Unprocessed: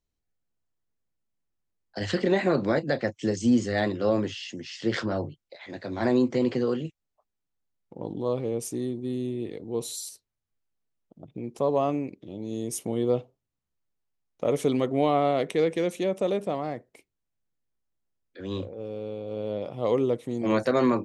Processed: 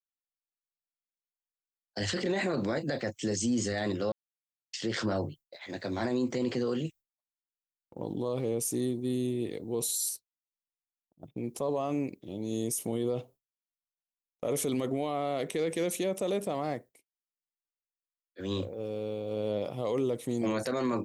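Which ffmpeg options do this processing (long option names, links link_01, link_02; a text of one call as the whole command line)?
ffmpeg -i in.wav -filter_complex "[0:a]asplit=3[link_01][link_02][link_03];[link_01]atrim=end=4.12,asetpts=PTS-STARTPTS,afade=type=out:start_time=4.116:duration=0.004:curve=hsin[link_04];[link_02]atrim=start=4.12:end=4.73,asetpts=PTS-STARTPTS,volume=0[link_05];[link_03]atrim=start=4.73,asetpts=PTS-STARTPTS,afade=type=in:duration=0.004:curve=hsin[link_06];[link_04][link_05][link_06]concat=n=3:v=0:a=1,agate=range=-33dB:threshold=-42dB:ratio=3:detection=peak,aemphasis=mode=production:type=50fm,alimiter=limit=-22dB:level=0:latency=1:release=36" out.wav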